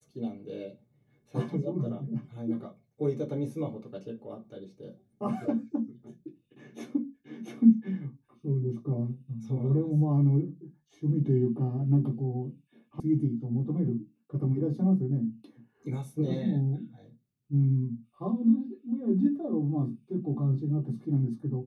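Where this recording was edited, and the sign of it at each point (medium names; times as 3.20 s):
13.00 s: sound stops dead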